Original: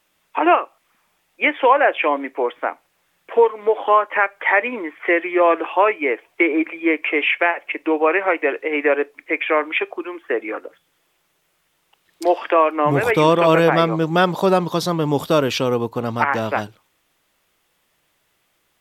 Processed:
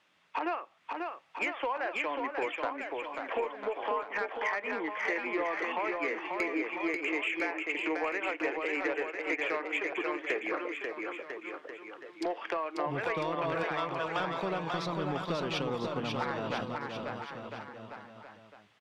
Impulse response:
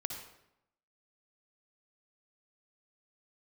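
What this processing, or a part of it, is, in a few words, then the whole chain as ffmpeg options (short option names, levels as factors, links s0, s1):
AM radio: -filter_complex "[0:a]asettb=1/sr,asplit=3[s0][s1][s2];[s0]atrim=end=13.634[s3];[s1]atrim=start=13.63:end=14.2,asetpts=PTS-STARTPTS,afade=t=in:d=0.004:c=qsin,afade=t=out:st=0.566:d=0.004:c=qsin,highpass=f=680:w=0.5412,highpass=f=680:w=1.3066[s4];[s2]atrim=start=14.196[s5];[s3][s4]acrossfade=d=0.004:c1=hsin:c2=qsin[s6];[s6][s5]acrossfade=d=0.004:c1=qsin:c2=hsin,highpass=130,lowpass=4000,equalizer=f=410:t=o:w=1.8:g=-4,acompressor=threshold=0.0316:ratio=8,asoftclip=type=tanh:threshold=0.0708,aecho=1:1:540|999|1389|1721|2003:0.631|0.398|0.251|0.158|0.1"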